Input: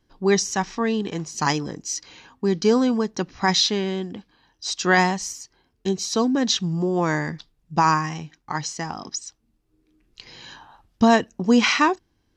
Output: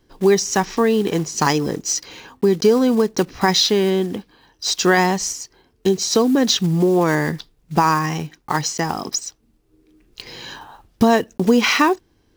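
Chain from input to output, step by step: block-companded coder 5-bit; peaking EQ 430 Hz +5.5 dB 0.77 oct; compression 2.5:1, threshold -21 dBFS, peak gain reduction 8.5 dB; trim +7 dB

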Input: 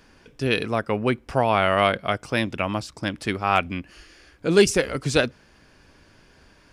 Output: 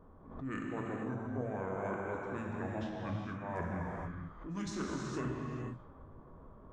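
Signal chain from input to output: level-controlled noise filter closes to 1.2 kHz, open at -17 dBFS; high-order bell 4.2 kHz -9.5 dB; hum notches 60/120/180/240/300 Hz; reverse; compression 8:1, threshold -36 dBFS, peak gain reduction 24 dB; reverse; formant shift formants -6 st; gated-style reverb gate 500 ms flat, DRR -2 dB; swell ahead of each attack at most 78 dB/s; trim -2 dB

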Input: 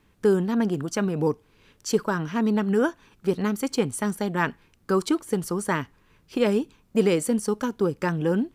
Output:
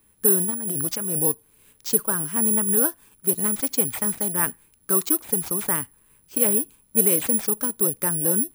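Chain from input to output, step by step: 0.50–1.19 s: compressor with a negative ratio -28 dBFS, ratio -1; careless resampling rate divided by 4×, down none, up zero stuff; trim -4.5 dB

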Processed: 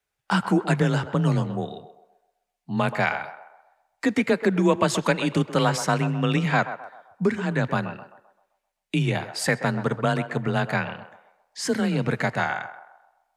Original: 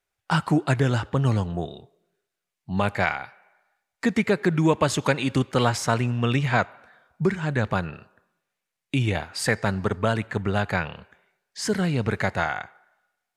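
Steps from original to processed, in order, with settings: band-passed feedback delay 130 ms, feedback 46%, band-pass 750 Hz, level -10 dB; frequency shift +26 Hz

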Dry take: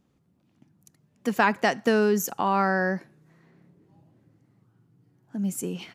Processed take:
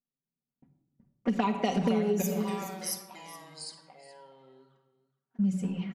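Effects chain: touch-sensitive flanger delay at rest 7.8 ms, full sweep at -21.5 dBFS; ever faster or slower copies 249 ms, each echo -3 st, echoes 2; level-controlled noise filter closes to 1.2 kHz, open at -20 dBFS; gate -58 dBFS, range -29 dB; 2.22–5.39 s: differentiator; comb 5.2 ms, depth 54%; delay 420 ms -17.5 dB; simulated room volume 2800 m³, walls furnished, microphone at 1.8 m; compression 12:1, threshold -23 dBFS, peak gain reduction 12 dB

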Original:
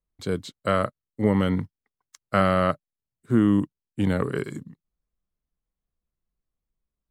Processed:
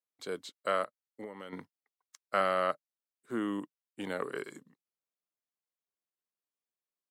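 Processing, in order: high-pass 430 Hz 12 dB/octave; 0.83–1.53 s: compression 8:1, threshold -35 dBFS, peak gain reduction 13.5 dB; trim -6 dB

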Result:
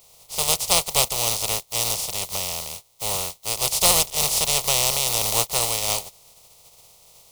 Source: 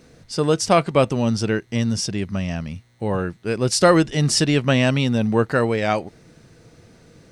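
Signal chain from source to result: spectral contrast reduction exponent 0.17; static phaser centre 670 Hz, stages 4; trim -1 dB

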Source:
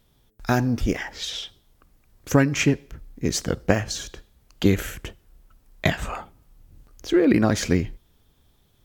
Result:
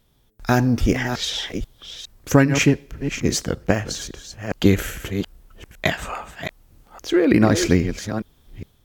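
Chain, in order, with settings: chunks repeated in reverse 411 ms, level -10 dB; level rider gain up to 5.5 dB; 5.85–7.32 s: bass shelf 250 Hz -8 dB

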